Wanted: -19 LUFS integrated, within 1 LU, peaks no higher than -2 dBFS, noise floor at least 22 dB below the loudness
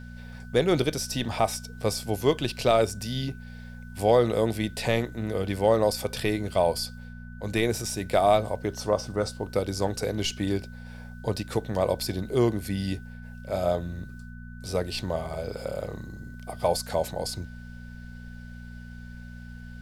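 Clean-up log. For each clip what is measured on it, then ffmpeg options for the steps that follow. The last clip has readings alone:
hum 60 Hz; highest harmonic 240 Hz; hum level -39 dBFS; steady tone 1.5 kHz; tone level -50 dBFS; loudness -27.5 LUFS; peak level -9.0 dBFS; loudness target -19.0 LUFS
-> -af "bandreject=f=60:t=h:w=4,bandreject=f=120:t=h:w=4,bandreject=f=180:t=h:w=4,bandreject=f=240:t=h:w=4"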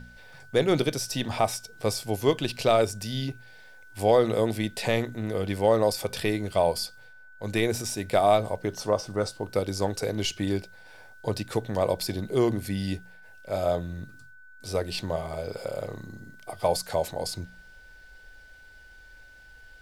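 hum not found; steady tone 1.5 kHz; tone level -50 dBFS
-> -af "bandreject=f=1500:w=30"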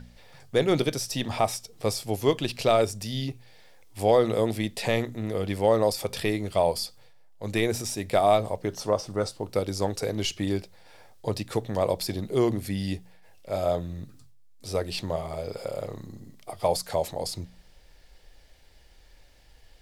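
steady tone not found; loudness -27.5 LUFS; peak level -9.5 dBFS; loudness target -19.0 LUFS
-> -af "volume=2.66,alimiter=limit=0.794:level=0:latency=1"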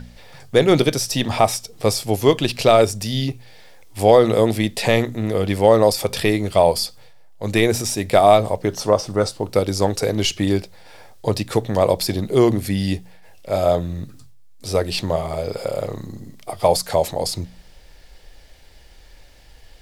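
loudness -19.0 LUFS; peak level -2.0 dBFS; noise floor -46 dBFS

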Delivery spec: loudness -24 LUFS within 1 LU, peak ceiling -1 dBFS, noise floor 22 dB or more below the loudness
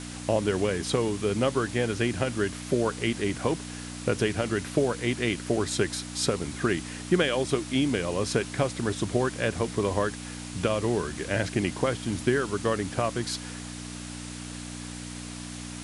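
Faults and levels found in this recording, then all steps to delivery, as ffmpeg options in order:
hum 60 Hz; highest harmonic 300 Hz; hum level -37 dBFS; noise floor -39 dBFS; noise floor target -51 dBFS; loudness -28.5 LUFS; peak level -10.5 dBFS; loudness target -24.0 LUFS
-> -af "bandreject=f=60:t=h:w=4,bandreject=f=120:t=h:w=4,bandreject=f=180:t=h:w=4,bandreject=f=240:t=h:w=4,bandreject=f=300:t=h:w=4"
-af "afftdn=nr=12:nf=-39"
-af "volume=1.68"

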